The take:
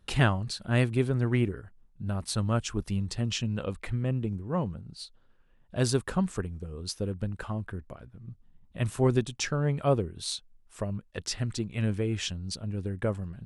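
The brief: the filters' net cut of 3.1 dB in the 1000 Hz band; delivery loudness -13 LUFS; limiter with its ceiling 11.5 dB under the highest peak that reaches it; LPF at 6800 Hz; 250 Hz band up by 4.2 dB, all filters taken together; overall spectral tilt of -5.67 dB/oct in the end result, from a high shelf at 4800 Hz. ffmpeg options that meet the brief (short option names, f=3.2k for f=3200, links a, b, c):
-af "lowpass=6.8k,equalizer=f=250:t=o:g=5.5,equalizer=f=1k:t=o:g=-5,highshelf=f=4.8k:g=5,volume=18dB,alimiter=limit=-0.5dB:level=0:latency=1"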